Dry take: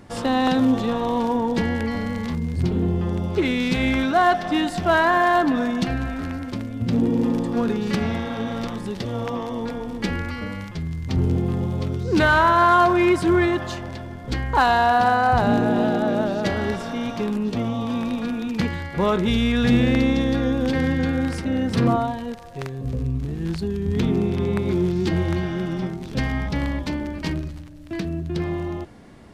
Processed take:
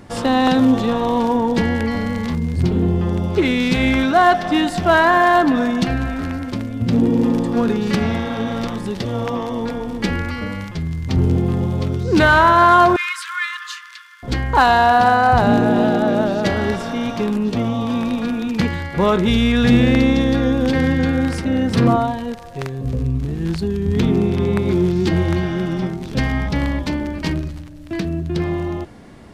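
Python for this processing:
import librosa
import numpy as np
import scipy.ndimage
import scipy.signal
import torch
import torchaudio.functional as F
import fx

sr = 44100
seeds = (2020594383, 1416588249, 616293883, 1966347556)

y = fx.steep_highpass(x, sr, hz=1100.0, slope=96, at=(12.96, 14.23))
y = F.gain(torch.from_numpy(y), 4.5).numpy()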